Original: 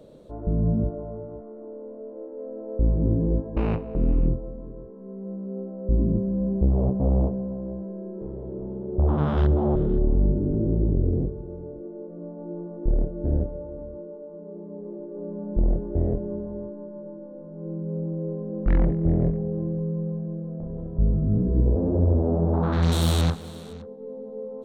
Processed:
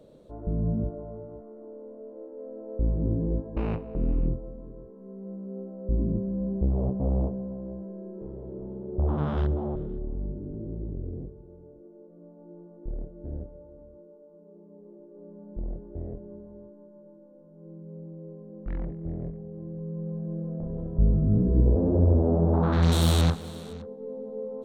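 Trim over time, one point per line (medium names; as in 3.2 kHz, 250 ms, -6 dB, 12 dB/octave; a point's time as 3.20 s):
9.36 s -4.5 dB
9.98 s -12.5 dB
19.52 s -12.5 dB
20.41 s 0 dB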